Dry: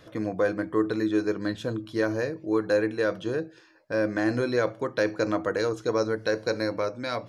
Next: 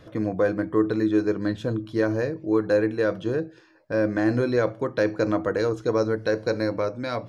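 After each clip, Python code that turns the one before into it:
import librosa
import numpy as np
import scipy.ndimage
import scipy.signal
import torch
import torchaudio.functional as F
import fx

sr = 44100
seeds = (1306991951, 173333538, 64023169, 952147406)

y = fx.tilt_eq(x, sr, slope=-1.5)
y = y * 10.0 ** (1.0 / 20.0)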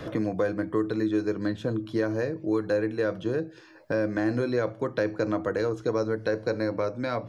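y = fx.band_squash(x, sr, depth_pct=70)
y = y * 10.0 ** (-4.0 / 20.0)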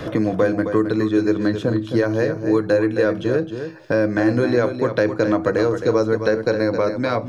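y = x + 10.0 ** (-8.5 / 20.0) * np.pad(x, (int(265 * sr / 1000.0), 0))[:len(x)]
y = y * 10.0 ** (8.0 / 20.0)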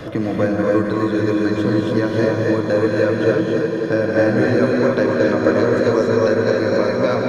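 y = fx.echo_swell(x, sr, ms=90, loudest=8, wet_db=-16.5)
y = fx.rev_gated(y, sr, seeds[0], gate_ms=310, shape='rising', drr_db=-2.0)
y = y * 10.0 ** (-2.0 / 20.0)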